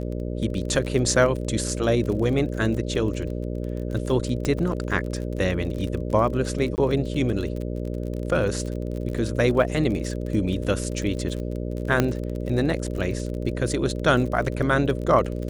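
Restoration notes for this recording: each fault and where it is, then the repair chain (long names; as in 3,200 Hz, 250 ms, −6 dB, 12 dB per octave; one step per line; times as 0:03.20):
mains buzz 60 Hz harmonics 10 −29 dBFS
surface crackle 36 per second −30 dBFS
0:04.45: click −13 dBFS
0:06.76–0:06.78: drop-out 19 ms
0:12.00: click −6 dBFS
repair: click removal
hum removal 60 Hz, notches 10
repair the gap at 0:06.76, 19 ms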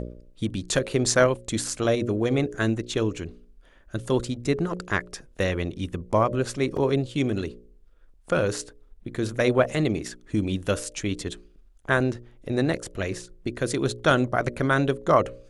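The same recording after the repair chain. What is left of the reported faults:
0:04.45: click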